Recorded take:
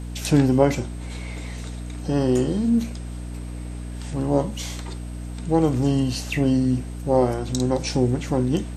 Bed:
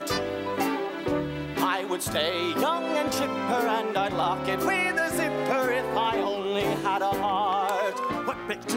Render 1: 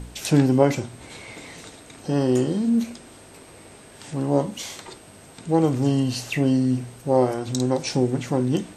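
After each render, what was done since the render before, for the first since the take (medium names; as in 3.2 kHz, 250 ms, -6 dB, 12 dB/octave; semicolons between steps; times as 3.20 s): de-hum 60 Hz, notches 5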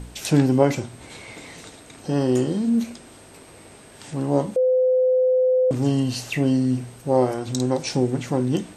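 4.56–5.71 s: bleep 511 Hz -15 dBFS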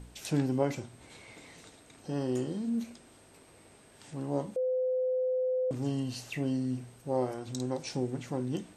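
trim -11.5 dB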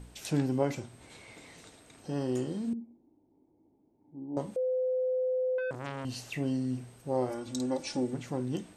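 2.73–4.37 s: cascade formant filter u; 5.58–6.05 s: transformer saturation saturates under 1.5 kHz; 7.29–8.14 s: comb 3.5 ms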